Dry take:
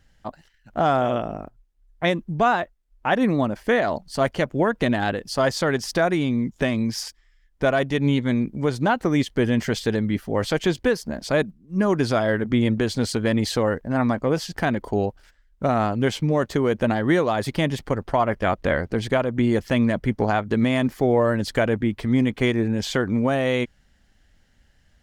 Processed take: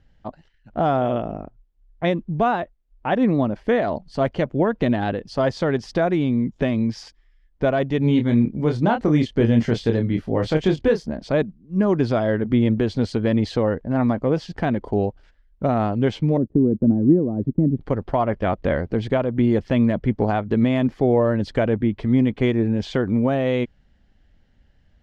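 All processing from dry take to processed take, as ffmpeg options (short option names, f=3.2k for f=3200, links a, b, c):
-filter_complex "[0:a]asettb=1/sr,asplit=3[a][b][c];[a]atrim=end=7.994[d];[b]atrim=start=7.99:end=11.09,asetpts=PTS-STARTPTS,afade=t=in:d=0.004:c=qsin,afade=t=out:st=3.096:d=0.004:c=qsin,bass=f=250:g=1,treble=f=4k:g=3,asplit=2[e][f];[f]adelay=26,volume=-5.5dB[g];[e][g]amix=inputs=2:normalize=0,atrim=end_sample=136710[h];[c]atrim=start=11.086[i];[d][h]acrossfade=d=0.004:c1=hsin:c2=qsin[j];[j][i]acrossfade=d=0.004:c1=qsin:c2=hsin,asettb=1/sr,asplit=3[k][l][m];[k]atrim=end=16.374[n];[l]atrim=start=16.37:end=17.81,asetpts=PTS-STARTPTS,afade=t=in:d=0.004:c=qsin,afade=t=out:st=1.436:d=0.004:c=qsin,agate=range=-20dB:threshold=-34dB:ratio=16:release=100:detection=peak,lowpass=f=280:t=q:w=1.9,acompressor=mode=upward:threshold=-27dB:ratio=2.5:attack=3.2:release=140:knee=2.83:detection=peak[o];[m]atrim=start=17.806[p];[n][o]acrossfade=d=0.004:c1=hsin:c2=qsin[q];[q][p]acrossfade=d=0.004:c1=qsin:c2=hsin,lowpass=3k,equalizer=f=1.6k:t=o:w=1.9:g=-7,volume=2.5dB"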